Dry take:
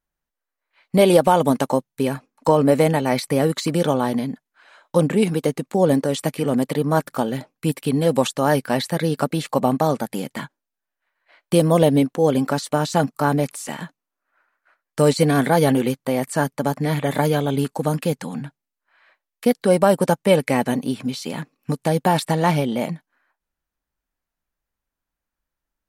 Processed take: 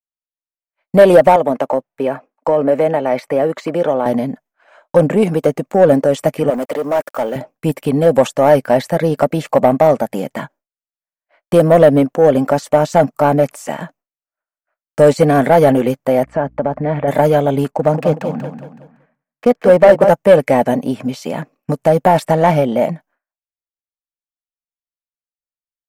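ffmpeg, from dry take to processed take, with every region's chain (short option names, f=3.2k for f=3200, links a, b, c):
-filter_complex "[0:a]asettb=1/sr,asplit=3[a][b][c];[a]atrim=end=1.364[d];[b]atrim=start=1.36:end=4.06,asetpts=PTS-STARTPTS,afade=t=in:d=0.004:c=qsin,afade=t=out:st=2.696:d=0.004:c=qsin,bass=f=250:g=-11,treble=f=4k:g=-12,acrossover=split=320|3000[e][f][g];[f]acompressor=threshold=-22dB:ratio=4:attack=3.2:release=140:knee=2.83:detection=peak[h];[e][h][g]amix=inputs=3:normalize=0[i];[c]atrim=start=4.056[j];[d][i]acrossfade=d=0.004:c1=hsin:c2=qsin[k];[k][j]acrossfade=d=0.004:c1=qsin:c2=hsin,asettb=1/sr,asplit=3[l][m][n];[l]atrim=end=6.504[o];[m]atrim=start=6.5:end=7.36,asetpts=PTS-STARTPTS,afade=t=in:d=0.004:c=qsin,afade=t=out:st=0.856:d=0.004:c=qsin,highpass=340,acrusher=bits=7:mix=0:aa=0.5,volume=22.5dB,asoftclip=hard,volume=-22.5dB[p];[n]atrim=start=7.356[q];[o][p]acrossfade=d=0.004:c1=hsin:c2=qsin[r];[r][q]acrossfade=d=0.004:c1=qsin:c2=hsin,asettb=1/sr,asplit=3[s][t][u];[s]atrim=end=16.234[v];[t]atrim=start=16.23:end=17.08,asetpts=PTS-STARTPTS,afade=t=in:d=0.004:c=qsin,afade=t=out:st=0.846:d=0.004:c=qsin,lowpass=2.2k,acompressor=threshold=-21dB:ratio=3:attack=3.2:release=140:knee=1:detection=peak,aeval=exprs='val(0)+0.00282*(sin(2*PI*60*n/s)+sin(2*PI*2*60*n/s)/2+sin(2*PI*3*60*n/s)/3+sin(2*PI*4*60*n/s)/4+sin(2*PI*5*60*n/s)/5)':c=same[w];[u]atrim=start=17.076[x];[v][w]acrossfade=d=0.004:c1=hsin:c2=qsin[y];[y][x]acrossfade=d=0.004:c1=qsin:c2=hsin,asettb=1/sr,asplit=3[z][aa][ab];[z]atrim=end=17.714[ac];[aa]atrim=start=17.71:end=20.09,asetpts=PTS-STARTPTS,afade=t=in:d=0.004:c=qsin,afade=t=out:st=2.376:d=0.004:c=qsin,adynamicsmooth=sensitivity=7:basefreq=2k,aecho=1:1:187|374|561|748|935:0.398|0.159|0.0637|0.0255|0.0102,atrim=end_sample=104958[ad];[ab]atrim=start=20.086[ae];[ac][ad]acrossfade=d=0.004:c1=hsin:c2=qsin[af];[af][ae]acrossfade=d=0.004:c1=qsin:c2=hsin,agate=range=-33dB:threshold=-46dB:ratio=3:detection=peak,equalizer=f=630:t=o:w=0.67:g=10,equalizer=f=4k:t=o:w=0.67:g=-9,equalizer=f=10k:t=o:w=0.67:g=-8,acontrast=30,volume=-1dB"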